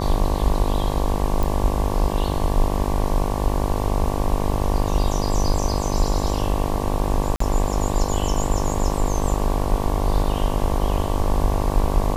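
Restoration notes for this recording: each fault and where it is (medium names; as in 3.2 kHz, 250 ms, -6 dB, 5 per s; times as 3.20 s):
buzz 50 Hz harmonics 23 -25 dBFS
1.43 s: pop
7.36–7.40 s: dropout 44 ms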